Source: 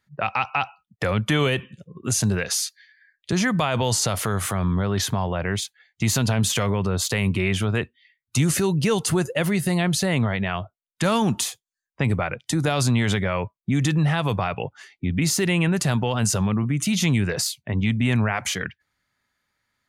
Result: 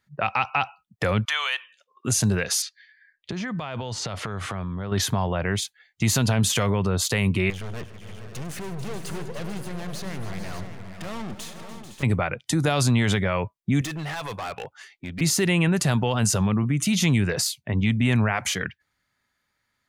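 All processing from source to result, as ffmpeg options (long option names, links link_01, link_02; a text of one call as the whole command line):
ffmpeg -i in.wav -filter_complex "[0:a]asettb=1/sr,asplit=3[link_01][link_02][link_03];[link_01]atrim=end=1.254[link_04];[link_02]atrim=start=1.25:end=2.05,asetpts=PTS-STARTPTS,afade=type=in:duration=0.004:curve=qsin,afade=type=out:start_time=0.796:duration=0.004:curve=qsin,highpass=frequency=890:width=0.5412,highpass=frequency=890:width=1.3066,highshelf=frequency=7300:width_type=q:width=1.5:gain=-6.5[link_05];[link_03]atrim=start=2.046[link_06];[link_04][link_05]acrossfade=duration=0.004:curve1=hsin:curve2=qsin[link_07];[link_07][link_06]acrossfade=duration=0.004:curve1=qsin:curve2=hsin,asettb=1/sr,asplit=3[link_08][link_09][link_10];[link_08]atrim=end=2.624[link_11];[link_09]atrim=start=2.62:end=4.92,asetpts=PTS-STARTPTS,afade=type=in:duration=0.004:curve=qsin,afade=type=out:start_time=2.296:duration=0.004:curve=qsin,lowpass=4300,acompressor=threshold=-26dB:ratio=12:attack=3.2:release=140:knee=1:detection=peak[link_12];[link_10]atrim=start=4.916[link_13];[link_11][link_12]acrossfade=duration=0.004:curve1=hsin:curve2=qsin[link_14];[link_14][link_13]acrossfade=duration=0.004:curve1=qsin:curve2=hsin,asettb=1/sr,asplit=3[link_15][link_16][link_17];[link_15]atrim=end=7.504[link_18];[link_16]atrim=start=7.5:end=12.03,asetpts=PTS-STARTPTS,afade=type=in:duration=0.004:curve=qsin,afade=type=out:start_time=4.526:duration=0.004:curve=qsin,highshelf=frequency=4600:gain=-12,aeval=exprs='(tanh(44.7*val(0)+0.75)-tanh(0.75))/44.7':channel_layout=same,aecho=1:1:101|158|291|441|513|587:0.168|0.119|0.2|0.251|0.224|0.316,atrim=end_sample=199773[link_19];[link_17]atrim=start=12.026[link_20];[link_18][link_19]acrossfade=duration=0.004:curve1=hsin:curve2=qsin[link_21];[link_21][link_20]acrossfade=duration=0.004:curve1=qsin:curve2=hsin,asettb=1/sr,asplit=3[link_22][link_23][link_24];[link_22]atrim=end=13.814[link_25];[link_23]atrim=start=13.81:end=15.21,asetpts=PTS-STARTPTS,afade=type=in:duration=0.004:curve=qsin,afade=type=out:start_time=1.396:duration=0.004:curve=qsin,equalizer=frequency=120:width_type=o:width=2.8:gain=-12.5,volume=28dB,asoftclip=hard,volume=-28dB[link_26];[link_24]atrim=start=15.206[link_27];[link_25][link_26]acrossfade=duration=0.004:curve1=hsin:curve2=qsin[link_28];[link_28][link_27]acrossfade=duration=0.004:curve1=qsin:curve2=hsin" out.wav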